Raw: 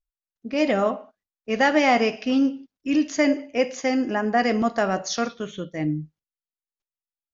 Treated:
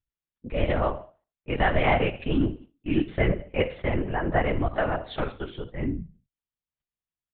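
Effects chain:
repeating echo 71 ms, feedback 28%, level −16 dB
linear-prediction vocoder at 8 kHz whisper
level −3 dB

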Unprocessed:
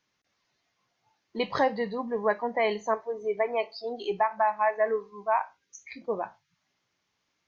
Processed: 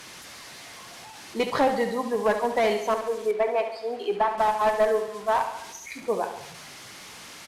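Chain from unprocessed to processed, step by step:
linear delta modulator 64 kbit/s, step −42.5 dBFS
low-shelf EQ 210 Hz −3.5 dB
on a send: repeating echo 70 ms, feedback 57%, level −9.5 dB
on the sum: asymmetric clip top −22.5 dBFS
0:03.31–0:04.38: bass and treble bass −6 dB, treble −13 dB
level +4.5 dB

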